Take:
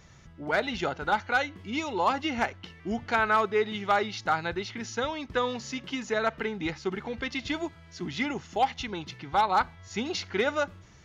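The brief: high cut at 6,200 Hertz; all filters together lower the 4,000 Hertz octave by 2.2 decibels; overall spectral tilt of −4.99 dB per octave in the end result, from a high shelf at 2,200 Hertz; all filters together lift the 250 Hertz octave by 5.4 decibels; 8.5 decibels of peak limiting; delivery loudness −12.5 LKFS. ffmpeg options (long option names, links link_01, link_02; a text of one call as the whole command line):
ffmpeg -i in.wav -af "lowpass=6200,equalizer=frequency=250:width_type=o:gain=6.5,highshelf=frequency=2200:gain=6.5,equalizer=frequency=4000:width_type=o:gain=-8.5,volume=19.5dB,alimiter=limit=-2dB:level=0:latency=1" out.wav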